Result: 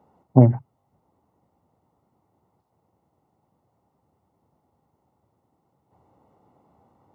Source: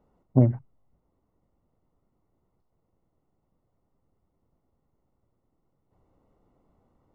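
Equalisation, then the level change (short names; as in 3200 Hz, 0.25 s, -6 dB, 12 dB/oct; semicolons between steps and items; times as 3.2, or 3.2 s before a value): HPF 80 Hz 24 dB/oct; bell 840 Hz +9 dB 0.48 oct; +5.5 dB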